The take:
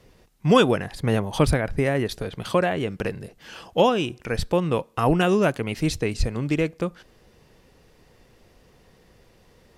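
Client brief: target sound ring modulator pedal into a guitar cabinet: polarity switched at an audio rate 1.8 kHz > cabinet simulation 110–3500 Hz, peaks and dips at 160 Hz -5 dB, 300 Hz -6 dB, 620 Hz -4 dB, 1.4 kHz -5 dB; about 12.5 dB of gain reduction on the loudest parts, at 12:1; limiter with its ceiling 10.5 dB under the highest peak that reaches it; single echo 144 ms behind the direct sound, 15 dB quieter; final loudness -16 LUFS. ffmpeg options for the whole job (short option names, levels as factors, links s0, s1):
-af "acompressor=threshold=0.0631:ratio=12,alimiter=limit=0.0668:level=0:latency=1,aecho=1:1:144:0.178,aeval=exprs='val(0)*sgn(sin(2*PI*1800*n/s))':c=same,highpass=110,equalizer=f=160:t=q:w=4:g=-5,equalizer=f=300:t=q:w=4:g=-6,equalizer=f=620:t=q:w=4:g=-4,equalizer=f=1400:t=q:w=4:g=-5,lowpass=f=3500:w=0.5412,lowpass=f=3500:w=1.3066,volume=8.41"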